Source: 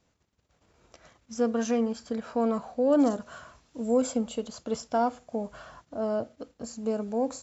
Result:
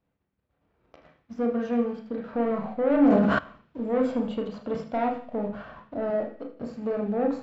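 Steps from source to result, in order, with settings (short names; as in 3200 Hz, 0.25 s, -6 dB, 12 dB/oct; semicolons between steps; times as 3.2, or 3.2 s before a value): 6.1–6.51 HPF 290 Hz 6 dB/oct; sample leveller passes 2; in parallel at -7.5 dB: hard clip -30.5 dBFS, distortion -5 dB; 1.33–2.33 on the sum: power-law curve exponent 1.4; air absorption 370 m; thinning echo 78 ms, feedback 50%, high-pass 1200 Hz, level -12.5 dB; on a send at -2 dB: reverb RT60 0.50 s, pre-delay 25 ms; 2.92–3.39 on the sum: sustainer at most 22 dB/s; gain -6 dB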